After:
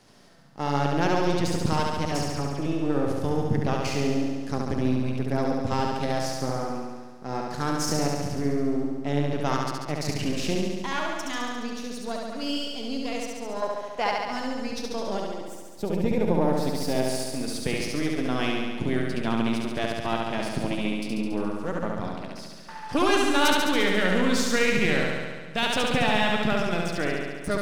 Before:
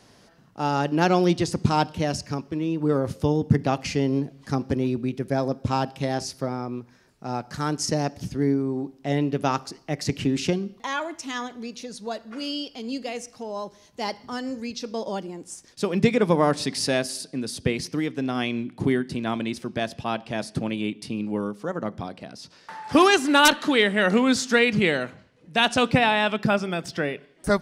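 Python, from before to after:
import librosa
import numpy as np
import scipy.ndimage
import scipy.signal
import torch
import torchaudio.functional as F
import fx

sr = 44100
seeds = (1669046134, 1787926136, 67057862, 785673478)

p1 = np.where(x < 0.0, 10.0 ** (-7.0 / 20.0) * x, x)
p2 = fx.band_shelf(p1, sr, hz=1200.0, db=10.5, octaves=2.9, at=(13.62, 14.1))
p3 = fx.spec_box(p2, sr, start_s=15.44, length_s=1.63, low_hz=1000.0, high_hz=11000.0, gain_db=-8)
p4 = fx.over_compress(p3, sr, threshold_db=-26.0, ratio=-1.0)
p5 = p3 + (p4 * librosa.db_to_amplitude(-3.0))
p6 = fx.dispersion(p5, sr, late='lows', ms=69.0, hz=2500.0, at=(2.05, 2.66))
p7 = p6 + fx.room_flutter(p6, sr, wall_m=12.0, rt60_s=1.5, dry=0)
y = p7 * librosa.db_to_amplitude(-6.5)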